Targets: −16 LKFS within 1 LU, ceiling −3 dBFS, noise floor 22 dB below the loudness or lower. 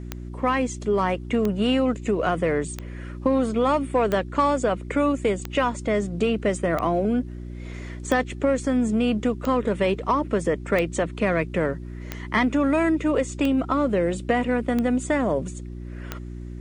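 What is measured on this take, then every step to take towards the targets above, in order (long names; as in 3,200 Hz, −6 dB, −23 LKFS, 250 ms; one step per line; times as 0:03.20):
number of clicks 13; mains hum 60 Hz; hum harmonics up to 360 Hz; level of the hum −32 dBFS; integrated loudness −23.5 LKFS; sample peak −9.0 dBFS; target loudness −16.0 LKFS
→ click removal
hum removal 60 Hz, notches 6
level +7.5 dB
brickwall limiter −3 dBFS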